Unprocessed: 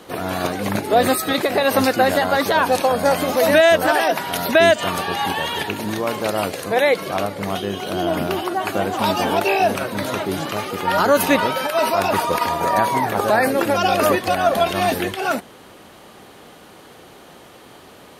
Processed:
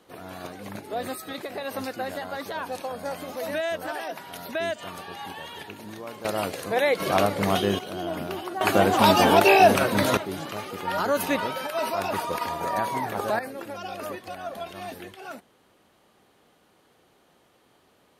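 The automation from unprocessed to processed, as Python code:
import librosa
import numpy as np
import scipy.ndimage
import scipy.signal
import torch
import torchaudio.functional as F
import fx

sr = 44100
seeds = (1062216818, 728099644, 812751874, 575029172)

y = fx.gain(x, sr, db=fx.steps((0.0, -15.5), (6.25, -6.0), (7.0, 1.0), (7.79, -10.0), (8.61, 2.0), (10.17, -9.0), (13.39, -18.0)))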